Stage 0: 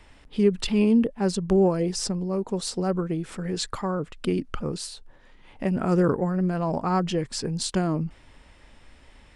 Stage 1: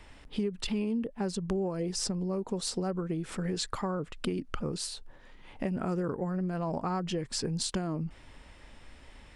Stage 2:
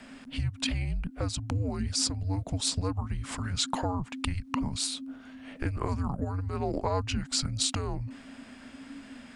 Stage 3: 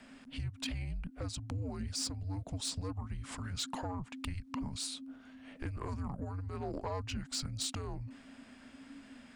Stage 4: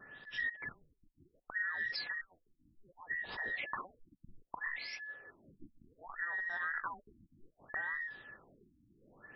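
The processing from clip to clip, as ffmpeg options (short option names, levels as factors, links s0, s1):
-af "acompressor=threshold=0.0355:ratio=6"
-af "equalizer=f=130:w=0.45:g=-7.5,afreqshift=-280,volume=1.88"
-af "asoftclip=type=tanh:threshold=0.0841,volume=0.447"
-af "afftfilt=real='real(if(between(b,1,1012),(2*floor((b-1)/92)+1)*92-b,b),0)':imag='imag(if(between(b,1,1012),(2*floor((b-1)/92)+1)*92-b,b),0)*if(between(b,1,1012),-1,1)':win_size=2048:overlap=0.75,afftfilt=real='re*lt(b*sr/1024,310*pow(5700/310,0.5+0.5*sin(2*PI*0.65*pts/sr)))':imag='im*lt(b*sr/1024,310*pow(5700/310,0.5+0.5*sin(2*PI*0.65*pts/sr)))':win_size=1024:overlap=0.75,volume=1.12"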